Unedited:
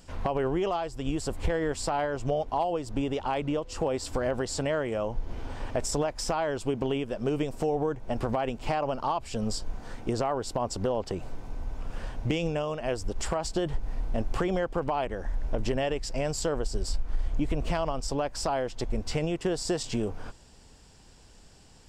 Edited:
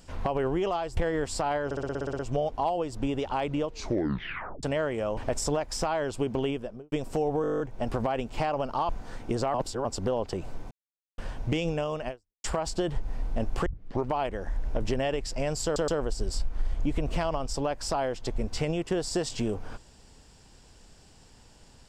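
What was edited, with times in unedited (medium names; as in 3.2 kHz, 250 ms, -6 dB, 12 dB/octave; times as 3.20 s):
0.97–1.45 s: delete
2.13 s: stutter 0.06 s, 10 plays
3.60 s: tape stop 0.97 s
5.11–5.64 s: delete
6.96–7.39 s: studio fade out
7.89 s: stutter 0.02 s, 10 plays
9.18–9.67 s: delete
10.32–10.63 s: reverse
11.49–11.96 s: mute
12.86–13.22 s: fade out exponential
14.44 s: tape start 0.43 s
16.42 s: stutter 0.12 s, 3 plays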